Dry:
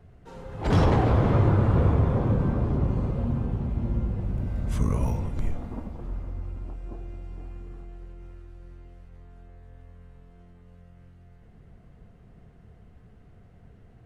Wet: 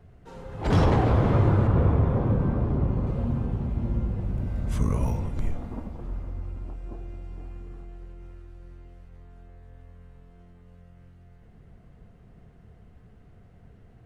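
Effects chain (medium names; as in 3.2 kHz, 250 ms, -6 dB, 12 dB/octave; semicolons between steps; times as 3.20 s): 1.67–3.07 s: treble shelf 4.1 kHz -9.5 dB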